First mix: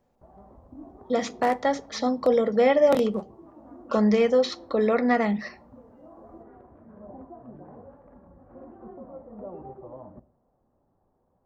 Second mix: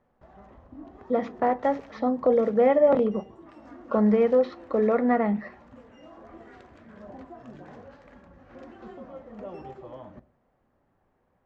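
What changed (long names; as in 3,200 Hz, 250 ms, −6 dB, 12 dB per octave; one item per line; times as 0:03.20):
background: remove low-pass filter 1,000 Hz 24 dB per octave
master: add low-pass filter 1,500 Hz 12 dB per octave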